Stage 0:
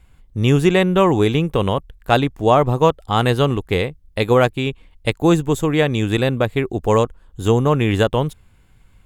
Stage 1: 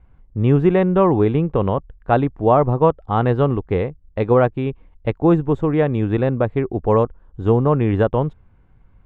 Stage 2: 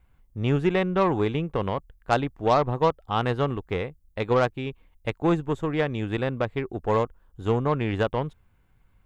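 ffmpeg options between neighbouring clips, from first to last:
-af "lowpass=1.3k"
-af "aeval=exprs='0.75*(cos(1*acos(clip(val(0)/0.75,-1,1)))-cos(1*PI/2))+0.0168*(cos(6*acos(clip(val(0)/0.75,-1,1)))-cos(6*PI/2))+0.0188*(cos(7*acos(clip(val(0)/0.75,-1,1)))-cos(7*PI/2))':c=same,crystalizer=i=7.5:c=0,volume=-8.5dB"

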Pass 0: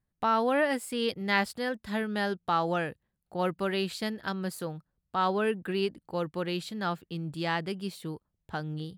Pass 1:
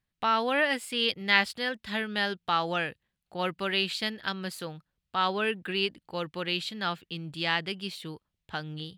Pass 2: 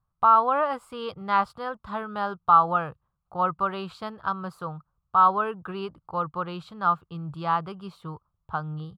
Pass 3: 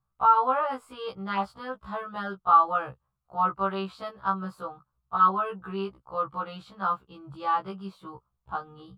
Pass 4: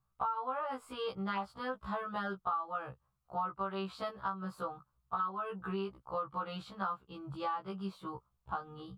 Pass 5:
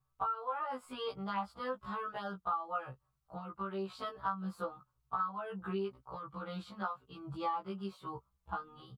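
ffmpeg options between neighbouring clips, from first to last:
-af "equalizer=f=3k:t=o:w=1.9:g=12.5,volume=-3.5dB"
-af "firequalizer=gain_entry='entry(140,0);entry(230,-13);entry(1200,7);entry(1800,-23)':delay=0.05:min_phase=1,volume=8dB"
-af "afftfilt=real='re*1.73*eq(mod(b,3),0)':imag='im*1.73*eq(mod(b,3),0)':win_size=2048:overlap=0.75"
-af "acompressor=threshold=-33dB:ratio=8"
-filter_complex "[0:a]asplit=2[a][b];[b]adelay=4.9,afreqshift=1[c];[a][c]amix=inputs=2:normalize=1,volume=2dB"

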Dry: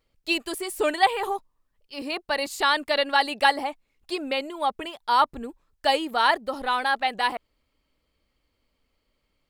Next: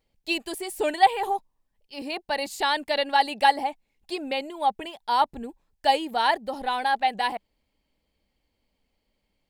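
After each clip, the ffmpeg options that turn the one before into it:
-af "equalizer=f=200:t=o:w=0.33:g=6,equalizer=f=800:t=o:w=0.33:g=6,equalizer=f=1.25k:t=o:w=0.33:g=-10,volume=-2dB"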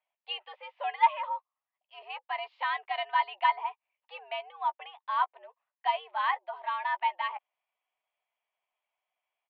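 -filter_complex "[0:a]asplit=2[a][b];[b]adelay=13,volume=-12dB[c];[a][c]amix=inputs=2:normalize=0,highpass=f=530:t=q:w=0.5412,highpass=f=530:t=q:w=1.307,lowpass=f=2.9k:t=q:w=0.5176,lowpass=f=2.9k:t=q:w=0.7071,lowpass=f=2.9k:t=q:w=1.932,afreqshift=140,volume=-6dB"

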